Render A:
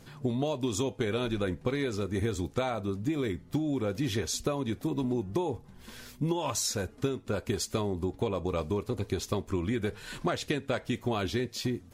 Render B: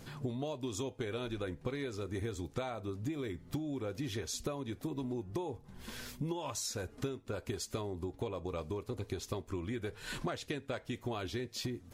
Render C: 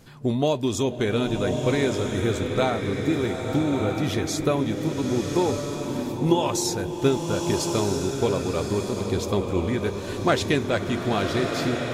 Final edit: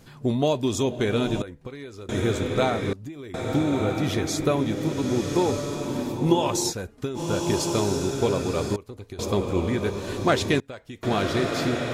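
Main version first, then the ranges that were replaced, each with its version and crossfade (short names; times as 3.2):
C
1.42–2.09 from B
2.93–3.34 from B
6.71–7.17 from A, crossfade 0.06 s
8.76–9.19 from B
10.6–11.03 from B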